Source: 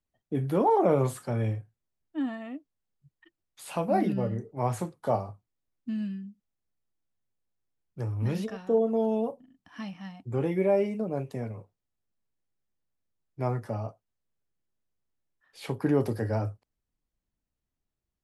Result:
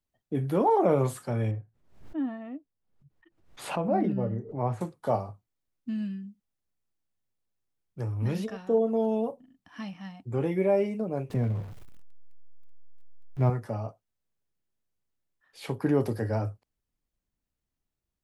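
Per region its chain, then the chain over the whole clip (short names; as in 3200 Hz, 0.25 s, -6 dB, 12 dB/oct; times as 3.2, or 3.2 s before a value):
1.51–4.81 LPF 1100 Hz 6 dB/oct + backwards sustainer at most 100 dB/s
11.3–13.5 zero-crossing step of -43 dBFS + tone controls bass +9 dB, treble -7 dB
whole clip: dry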